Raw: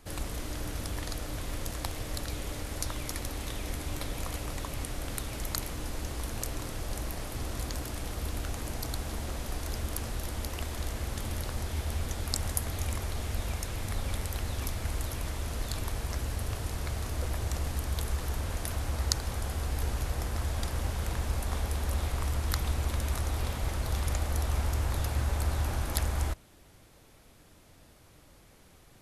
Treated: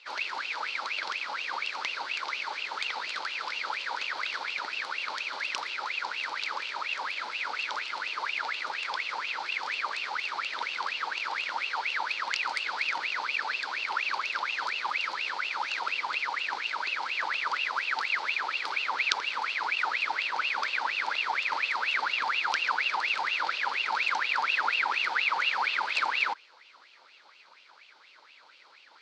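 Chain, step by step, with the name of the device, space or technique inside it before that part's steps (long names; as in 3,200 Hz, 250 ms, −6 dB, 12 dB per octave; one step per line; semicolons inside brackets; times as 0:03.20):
voice changer toy (ring modulator whose carrier an LFO sweeps 1,800 Hz, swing 55%, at 4.2 Hz; loudspeaker in its box 570–4,600 Hz, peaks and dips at 730 Hz −9 dB, 1,100 Hz −4 dB, 1,800 Hz −7 dB, 2,800 Hz −5 dB, 4,400 Hz +6 dB)
level +8 dB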